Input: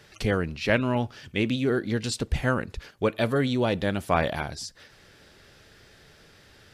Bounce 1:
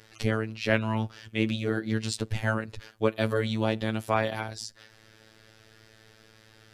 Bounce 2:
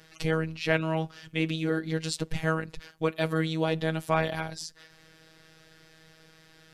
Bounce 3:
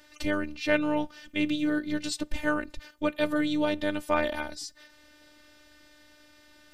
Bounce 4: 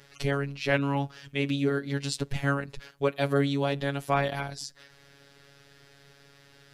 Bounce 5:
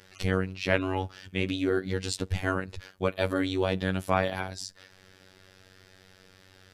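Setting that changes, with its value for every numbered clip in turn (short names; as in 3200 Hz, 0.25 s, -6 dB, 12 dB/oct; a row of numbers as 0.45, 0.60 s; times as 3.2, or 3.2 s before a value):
robotiser, frequency: 110, 160, 300, 140, 94 Hz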